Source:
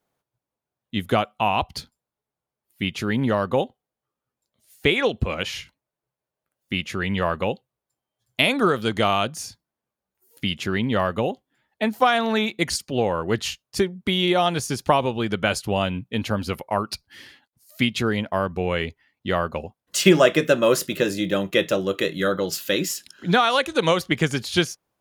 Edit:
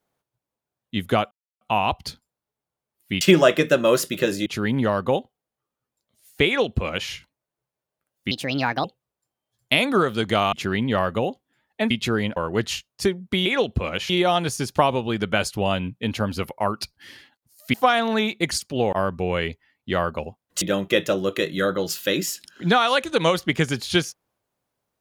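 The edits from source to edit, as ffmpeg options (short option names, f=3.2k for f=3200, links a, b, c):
-filter_complex "[0:a]asplit=14[a][b][c][d][e][f][g][h][i][j][k][l][m][n];[a]atrim=end=1.31,asetpts=PTS-STARTPTS,afade=t=out:st=1.306:d=0.004:c=hsin,apad=pad_dur=0.3[o];[b]atrim=start=1.31:end=2.912,asetpts=PTS-STARTPTS,afade=t=in:d=0.004:c=hsin[p];[c]atrim=start=19.988:end=21.242[q];[d]atrim=start=2.908:end=6.764[r];[e]atrim=start=6.76:end=7.52,asetpts=PTS-STARTPTS,asetrate=62622,aresample=44100[s];[f]atrim=start=7.516:end=9.202[t];[g]atrim=start=10.538:end=11.922[u];[h]atrim=start=17.838:end=18.302[v];[i]atrim=start=13.108:end=14.202[w];[j]atrim=start=4.908:end=5.552[x];[k]atrim=start=14.198:end=17.842[y];[l]atrim=start=11.918:end=13.112[z];[m]atrim=start=18.298:end=19.992[aa];[n]atrim=start=21.238[ab];[o][p]concat=n=2:v=0:a=1[ac];[ac][q]acrossfade=d=0.004:c1=hsin:c2=hsin[ad];[ad][r]acrossfade=d=0.004:c1=hsin:c2=hsin[ae];[ae][s]acrossfade=d=0.004:c1=hsin:c2=hsin[af];[af][t]acrossfade=d=0.004:c1=hsin:c2=hsin[ag];[ag][u]acrossfade=d=0.004:c1=hsin:c2=hsin[ah];[ah][v]acrossfade=d=0.004:c1=hsin:c2=hsin[ai];[ai][w]acrossfade=d=0.004:c1=hsin:c2=hsin[aj];[aj][x]acrossfade=d=0.004:c1=hsin:c2=hsin[ak];[ak][y]acrossfade=d=0.004:c1=hsin:c2=hsin[al];[al][z]acrossfade=d=0.004:c1=hsin:c2=hsin[am];[am][aa]acrossfade=d=0.004:c1=hsin:c2=hsin[an];[an][ab]acrossfade=d=0.004:c1=hsin:c2=hsin"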